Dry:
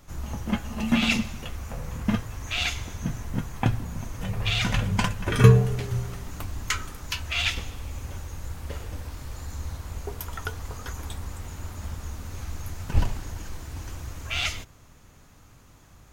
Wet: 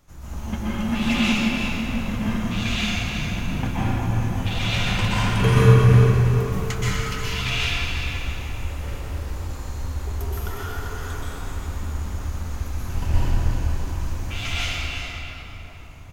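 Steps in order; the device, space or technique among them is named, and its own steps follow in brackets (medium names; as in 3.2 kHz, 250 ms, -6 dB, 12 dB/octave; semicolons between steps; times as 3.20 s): cave (delay 361 ms -9.5 dB; reverberation RT60 4.0 s, pre-delay 117 ms, DRR -10 dB); trim -6.5 dB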